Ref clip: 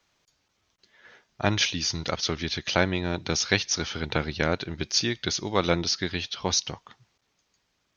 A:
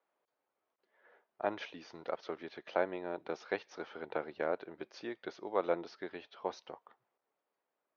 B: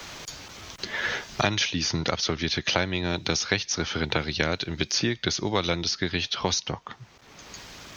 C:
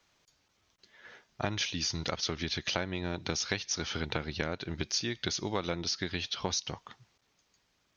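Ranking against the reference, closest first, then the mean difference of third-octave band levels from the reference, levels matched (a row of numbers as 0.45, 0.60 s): C, B, A; 2.5, 4.0, 7.5 dB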